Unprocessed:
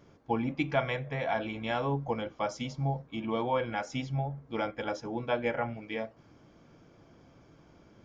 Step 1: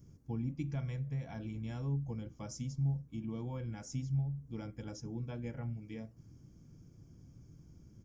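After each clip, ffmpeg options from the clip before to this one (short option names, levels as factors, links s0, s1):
-filter_complex "[0:a]firequalizer=gain_entry='entry(120,0);entry(220,-8);entry(610,-25);entry(1200,-24);entry(2600,-22);entry(3700,-22);entry(5700,-6);entry(9500,-1)':delay=0.05:min_phase=1,asplit=2[s0][s1];[s1]acompressor=threshold=0.00447:ratio=6,volume=1.33[s2];[s0][s2]amix=inputs=2:normalize=0,volume=0.891"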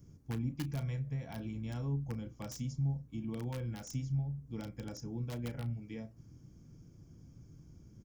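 -filter_complex "[0:a]acrossover=split=320[s0][s1];[s1]aeval=exprs='(mod(94.4*val(0)+1,2)-1)/94.4':c=same[s2];[s0][s2]amix=inputs=2:normalize=0,asplit=2[s3][s4];[s4]adelay=33,volume=0.211[s5];[s3][s5]amix=inputs=2:normalize=0,volume=1.12"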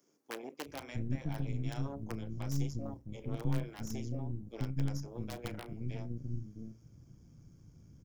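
-filter_complex "[0:a]aeval=exprs='0.0562*(cos(1*acos(clip(val(0)/0.0562,-1,1)))-cos(1*PI/2))+0.0224*(cos(4*acos(clip(val(0)/0.0562,-1,1)))-cos(4*PI/2))':c=same,acrossover=split=330[s0][s1];[s0]adelay=660[s2];[s2][s1]amix=inputs=2:normalize=0,volume=0.891"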